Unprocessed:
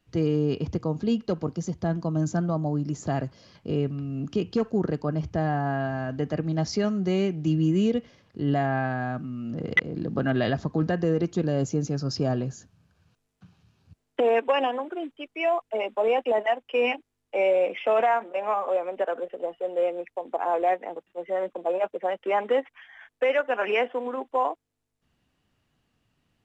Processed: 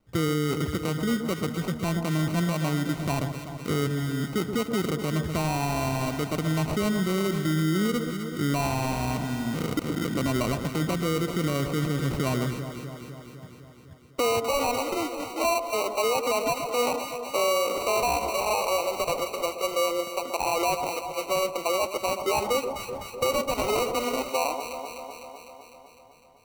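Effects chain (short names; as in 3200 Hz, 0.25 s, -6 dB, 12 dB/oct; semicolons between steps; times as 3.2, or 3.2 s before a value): sample-and-hold 26×; echo with dull and thin repeats by turns 0.126 s, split 1100 Hz, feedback 81%, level -11 dB; limiter -20.5 dBFS, peak gain reduction 10 dB; gain +2.5 dB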